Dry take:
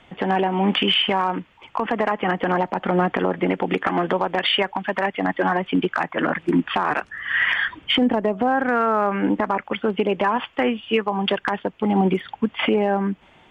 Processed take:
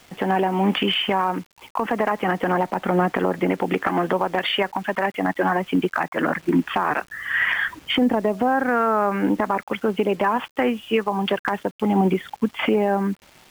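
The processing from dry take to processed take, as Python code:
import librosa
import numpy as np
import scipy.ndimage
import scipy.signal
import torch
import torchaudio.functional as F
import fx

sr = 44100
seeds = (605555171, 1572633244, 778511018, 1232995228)

y = fx.dynamic_eq(x, sr, hz=3500.0, q=1.7, threshold_db=-40.0, ratio=4.0, max_db=-5)
y = fx.quant_dither(y, sr, seeds[0], bits=8, dither='none')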